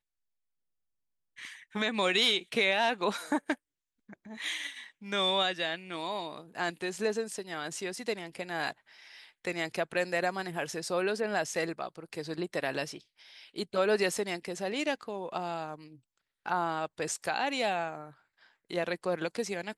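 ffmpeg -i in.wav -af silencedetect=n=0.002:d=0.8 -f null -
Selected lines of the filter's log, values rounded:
silence_start: 0.00
silence_end: 1.37 | silence_duration: 1.37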